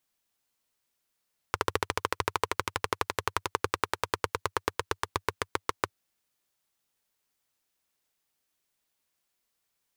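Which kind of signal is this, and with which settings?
single-cylinder engine model, changing speed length 4.36 s, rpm 1700, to 800, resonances 96/440/1000 Hz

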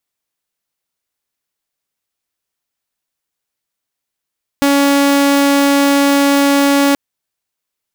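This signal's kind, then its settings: tone saw 281 Hz -6.5 dBFS 2.33 s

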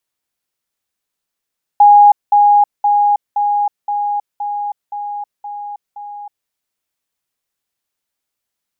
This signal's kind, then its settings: level ladder 823 Hz -3 dBFS, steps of -3 dB, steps 9, 0.32 s 0.20 s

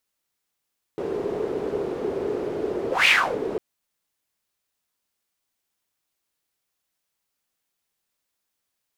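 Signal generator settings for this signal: whoosh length 2.60 s, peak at 2.09 s, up 0.18 s, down 0.32 s, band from 410 Hz, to 2.6 kHz, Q 5.1, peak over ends 11 dB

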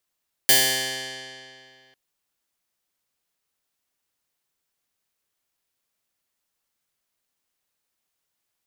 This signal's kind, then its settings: plucked string C3, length 1.45 s, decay 2.41 s, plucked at 0.1, bright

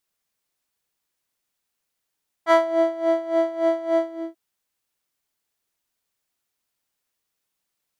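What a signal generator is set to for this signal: synth patch with tremolo E5, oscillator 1 square, oscillator 2 square, interval +12 st, detune 9 cents, oscillator 2 level -12 dB, sub -2 dB, noise -12 dB, filter bandpass, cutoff 310 Hz, Q 1.8, filter envelope 2 oct, filter decay 0.27 s, attack 47 ms, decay 0.33 s, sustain -7 dB, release 0.37 s, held 1.52 s, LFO 3.5 Hz, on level 15.5 dB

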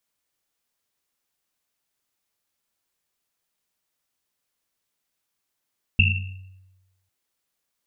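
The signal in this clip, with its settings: Risset drum, pitch 94 Hz, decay 1.14 s, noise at 2.7 kHz, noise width 180 Hz, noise 45%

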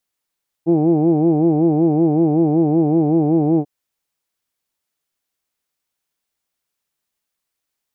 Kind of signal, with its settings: formant vowel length 2.99 s, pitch 160 Hz, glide -0.5 st, vibrato depth 1.2 st, F1 350 Hz, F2 760 Hz, F3 2.4 kHz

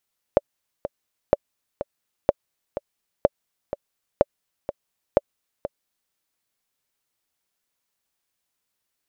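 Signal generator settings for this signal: metronome 125 bpm, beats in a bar 2, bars 6, 573 Hz, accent 12 dB -2 dBFS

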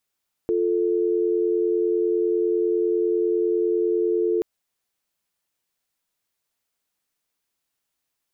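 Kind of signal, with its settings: call progress tone dial tone, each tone -21.5 dBFS 3.93 s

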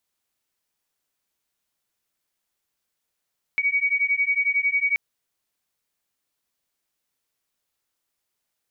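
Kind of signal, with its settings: beating tones 2.25 kHz, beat 11 Hz, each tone -22.5 dBFS 1.38 s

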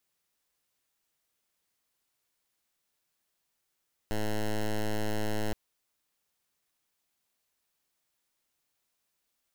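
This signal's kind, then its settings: pulse 107 Hz, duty 9% -29 dBFS 1.42 s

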